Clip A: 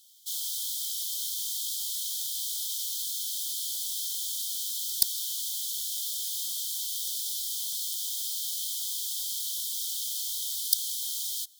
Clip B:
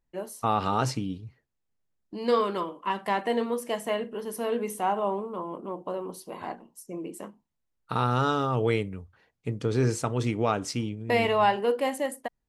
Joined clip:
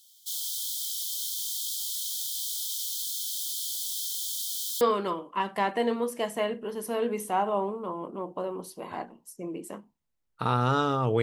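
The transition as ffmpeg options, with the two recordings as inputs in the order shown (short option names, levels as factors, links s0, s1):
-filter_complex "[0:a]apad=whole_dur=11.22,atrim=end=11.22,atrim=end=4.812[s0];[1:a]atrim=start=2.308:end=8.72[s1];[s0][s1]acrossfade=d=0.004:c1=hsin:c2=hsin"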